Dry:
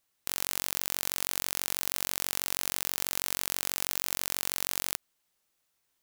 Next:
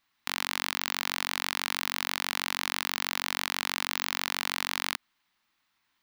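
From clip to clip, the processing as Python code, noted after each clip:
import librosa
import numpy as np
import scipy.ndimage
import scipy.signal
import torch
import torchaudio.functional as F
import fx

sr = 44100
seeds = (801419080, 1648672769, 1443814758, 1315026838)

y = fx.graphic_eq_10(x, sr, hz=(250, 500, 1000, 2000, 4000, 8000, 16000), db=(8, -9, 9, 7, 6, -6, -7))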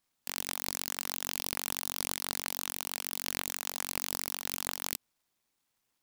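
y = fx.noise_mod_delay(x, sr, seeds[0], noise_hz=4100.0, depth_ms=0.22)
y = y * 10.0 ** (-4.0 / 20.0)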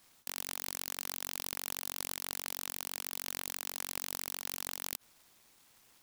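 y = fx.spectral_comp(x, sr, ratio=2.0)
y = y * 10.0 ** (-3.0 / 20.0)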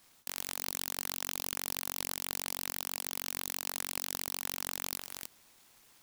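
y = x + 10.0 ** (-5.0 / 20.0) * np.pad(x, (int(303 * sr / 1000.0), 0))[:len(x)]
y = y * 10.0 ** (1.0 / 20.0)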